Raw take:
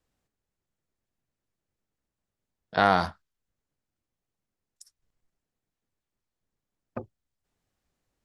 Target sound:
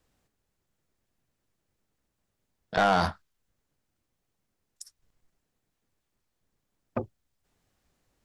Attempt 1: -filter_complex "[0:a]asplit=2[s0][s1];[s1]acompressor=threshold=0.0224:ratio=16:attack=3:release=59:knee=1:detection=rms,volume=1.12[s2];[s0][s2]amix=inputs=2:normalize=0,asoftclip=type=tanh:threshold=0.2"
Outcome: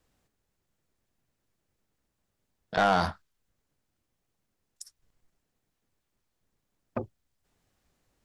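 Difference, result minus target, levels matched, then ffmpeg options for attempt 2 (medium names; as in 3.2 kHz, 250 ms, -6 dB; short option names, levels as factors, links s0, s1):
compression: peak gain reduction +7 dB
-filter_complex "[0:a]asplit=2[s0][s1];[s1]acompressor=threshold=0.0531:ratio=16:attack=3:release=59:knee=1:detection=rms,volume=1.12[s2];[s0][s2]amix=inputs=2:normalize=0,asoftclip=type=tanh:threshold=0.2"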